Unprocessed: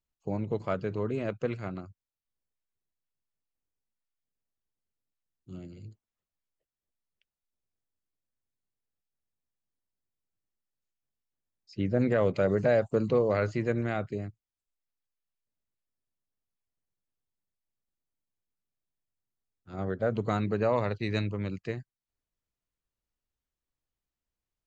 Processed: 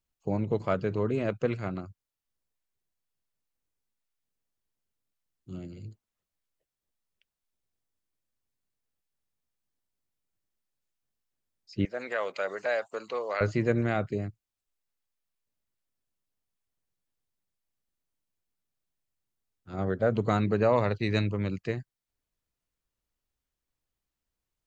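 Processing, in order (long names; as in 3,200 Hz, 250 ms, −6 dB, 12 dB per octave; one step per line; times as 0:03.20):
0:11.85–0:13.41: high-pass filter 900 Hz 12 dB per octave
level +3 dB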